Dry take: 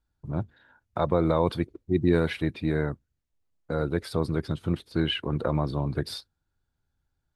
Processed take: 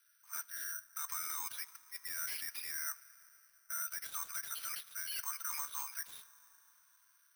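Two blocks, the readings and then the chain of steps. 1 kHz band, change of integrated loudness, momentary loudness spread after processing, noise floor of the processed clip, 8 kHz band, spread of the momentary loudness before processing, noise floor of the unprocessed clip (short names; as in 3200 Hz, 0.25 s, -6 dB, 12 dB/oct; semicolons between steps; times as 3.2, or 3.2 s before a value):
-13.5 dB, -11.5 dB, 8 LU, -70 dBFS, +14.5 dB, 10 LU, -81 dBFS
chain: steep high-pass 1400 Hz 36 dB/oct; reverse; compressor 16:1, threshold -47 dBFS, peak gain reduction 23 dB; reverse; transient shaper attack -7 dB, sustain -1 dB; limiter -47.5 dBFS, peak gain reduction 9 dB; overdrive pedal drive 15 dB, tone 1800 Hz, clips at -47.5 dBFS; plate-style reverb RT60 4.2 s, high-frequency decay 0.55×, DRR 17 dB; careless resampling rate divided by 6×, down filtered, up zero stuff; gain +9 dB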